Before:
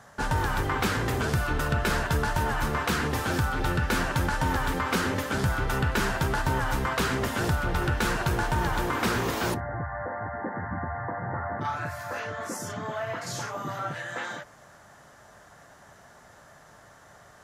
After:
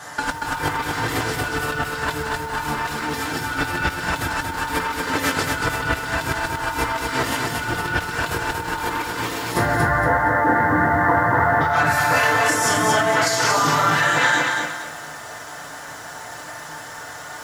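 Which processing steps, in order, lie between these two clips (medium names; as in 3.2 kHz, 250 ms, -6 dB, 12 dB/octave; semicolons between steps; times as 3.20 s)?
tilt EQ +3 dB/octave; FDN reverb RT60 0.43 s, low-frequency decay 1.3×, high-frequency decay 0.65×, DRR -4 dB; in parallel at -5.5 dB: saturation -18 dBFS, distortion -14 dB; on the sum: compressor with a negative ratio -24 dBFS, ratio -0.5; treble shelf 10 kHz -11.5 dB; band-stop 6.1 kHz, Q 16; bit-crushed delay 233 ms, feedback 35%, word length 8-bit, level -3.5 dB; trim +2.5 dB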